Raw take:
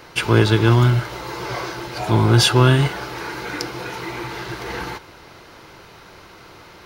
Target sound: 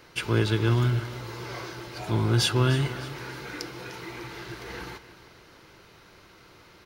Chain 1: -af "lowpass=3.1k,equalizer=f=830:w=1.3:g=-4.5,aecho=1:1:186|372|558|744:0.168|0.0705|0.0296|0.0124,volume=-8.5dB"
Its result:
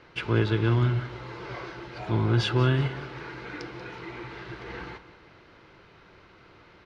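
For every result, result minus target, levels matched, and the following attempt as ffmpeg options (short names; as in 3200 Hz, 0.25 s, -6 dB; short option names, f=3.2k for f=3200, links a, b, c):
echo 0.115 s early; 4000 Hz band -4.5 dB
-af "lowpass=3.1k,equalizer=f=830:w=1.3:g=-4.5,aecho=1:1:301|602|903|1204:0.168|0.0705|0.0296|0.0124,volume=-8.5dB"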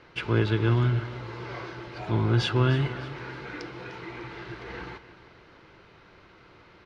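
4000 Hz band -4.5 dB
-af "equalizer=f=830:w=1.3:g=-4.5,aecho=1:1:301|602|903|1204:0.168|0.0705|0.0296|0.0124,volume=-8.5dB"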